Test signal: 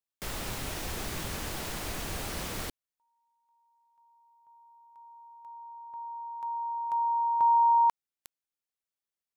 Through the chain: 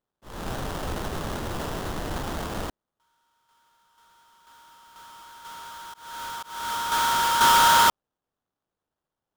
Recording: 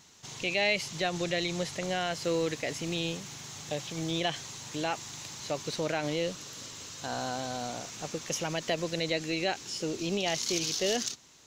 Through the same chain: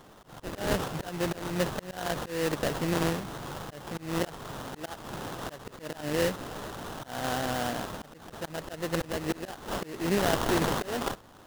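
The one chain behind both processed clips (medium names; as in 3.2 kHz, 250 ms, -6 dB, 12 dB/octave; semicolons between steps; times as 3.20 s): sample-rate reducer 2.3 kHz, jitter 20%; slow attack 283 ms; trim +5 dB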